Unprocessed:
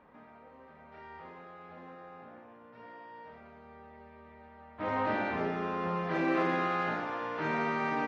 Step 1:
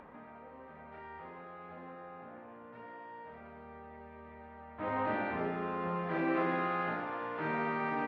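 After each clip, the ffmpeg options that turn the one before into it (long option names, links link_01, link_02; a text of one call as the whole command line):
ffmpeg -i in.wav -filter_complex "[0:a]lowpass=2900,asplit=2[link_01][link_02];[link_02]acompressor=mode=upward:threshold=-36dB:ratio=2.5,volume=1dB[link_03];[link_01][link_03]amix=inputs=2:normalize=0,volume=-9dB" out.wav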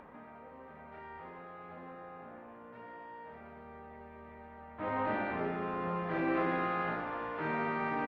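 ffmpeg -i in.wav -filter_complex "[0:a]asplit=6[link_01][link_02][link_03][link_04][link_05][link_06];[link_02]adelay=186,afreqshift=-55,volume=-18.5dB[link_07];[link_03]adelay=372,afreqshift=-110,volume=-23.2dB[link_08];[link_04]adelay=558,afreqshift=-165,volume=-28dB[link_09];[link_05]adelay=744,afreqshift=-220,volume=-32.7dB[link_10];[link_06]adelay=930,afreqshift=-275,volume=-37.4dB[link_11];[link_01][link_07][link_08][link_09][link_10][link_11]amix=inputs=6:normalize=0" out.wav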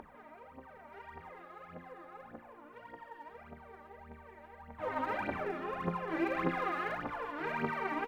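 ffmpeg -i in.wav -af "aemphasis=mode=production:type=cd,aphaser=in_gain=1:out_gain=1:delay=3.6:decay=0.75:speed=1.7:type=triangular,volume=-5dB" out.wav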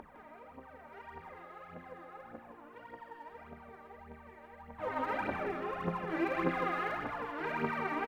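ffmpeg -i in.wav -af "aecho=1:1:159:0.398" out.wav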